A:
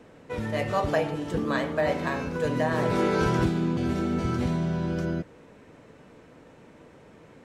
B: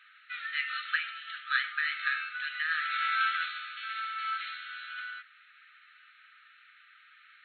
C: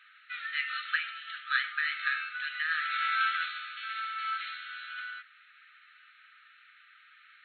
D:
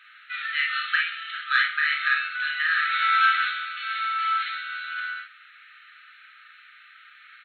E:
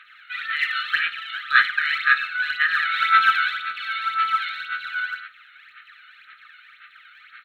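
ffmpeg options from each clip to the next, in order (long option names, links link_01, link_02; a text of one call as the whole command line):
ffmpeg -i in.wav -af "afftfilt=real='re*between(b*sr/4096,1200,4300)':imag='im*between(b*sr/4096,1200,4300)':win_size=4096:overlap=0.75,volume=4.5dB" out.wav
ffmpeg -i in.wav -af anull out.wav
ffmpeg -i in.wav -af "aecho=1:1:35|53:0.562|0.631,acontrast=38" out.wav
ffmpeg -i in.wav -af "aphaser=in_gain=1:out_gain=1:delay=1.4:decay=0.61:speed=1.9:type=sinusoidal" out.wav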